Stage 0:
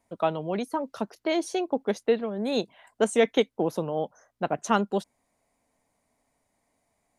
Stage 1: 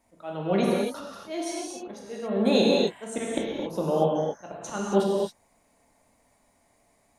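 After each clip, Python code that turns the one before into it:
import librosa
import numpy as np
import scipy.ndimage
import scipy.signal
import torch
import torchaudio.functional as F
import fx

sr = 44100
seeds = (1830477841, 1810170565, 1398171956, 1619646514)

y = fx.auto_swell(x, sr, attack_ms=343.0)
y = fx.rev_gated(y, sr, seeds[0], gate_ms=300, shape='flat', drr_db=-4.5)
y = F.gain(torch.from_numpy(y), 3.0).numpy()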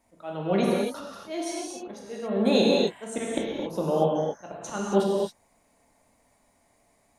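y = x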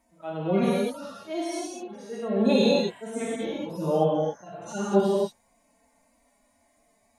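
y = fx.hpss_only(x, sr, part='harmonic')
y = F.gain(torch.from_numpy(y), 1.5).numpy()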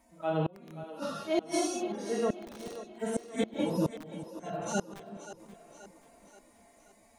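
y = (np.mod(10.0 ** (13.0 / 20.0) * x + 1.0, 2.0) - 1.0) / 10.0 ** (13.0 / 20.0)
y = fx.gate_flip(y, sr, shuts_db=-21.0, range_db=-33)
y = fx.echo_split(y, sr, split_hz=300.0, low_ms=369, high_ms=530, feedback_pct=52, wet_db=-13.0)
y = F.gain(torch.from_numpy(y), 3.5).numpy()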